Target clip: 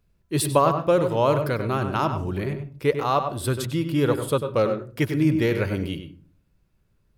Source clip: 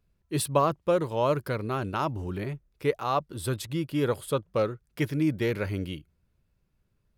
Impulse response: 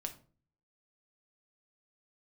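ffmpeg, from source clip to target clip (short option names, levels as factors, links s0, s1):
-filter_complex "[0:a]asplit=2[s0][s1];[1:a]atrim=start_sample=2205,highshelf=f=4000:g=-9,adelay=97[s2];[s1][s2]afir=irnorm=-1:irlink=0,volume=0.562[s3];[s0][s3]amix=inputs=2:normalize=0,volume=1.68"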